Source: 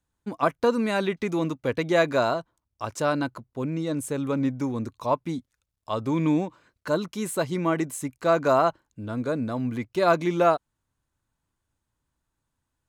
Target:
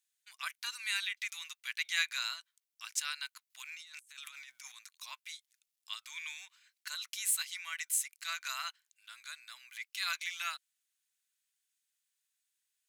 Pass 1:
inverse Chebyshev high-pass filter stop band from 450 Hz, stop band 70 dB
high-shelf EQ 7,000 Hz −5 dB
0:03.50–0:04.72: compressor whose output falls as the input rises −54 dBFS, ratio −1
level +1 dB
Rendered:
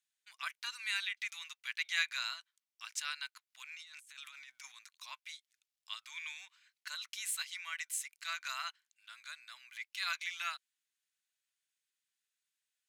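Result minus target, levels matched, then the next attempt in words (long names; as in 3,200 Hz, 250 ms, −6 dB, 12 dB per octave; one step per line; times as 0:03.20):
8,000 Hz band −3.5 dB
inverse Chebyshev high-pass filter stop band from 450 Hz, stop band 70 dB
high-shelf EQ 7,000 Hz +5.5 dB
0:03.50–0:04.72: compressor whose output falls as the input rises −54 dBFS, ratio −1
level +1 dB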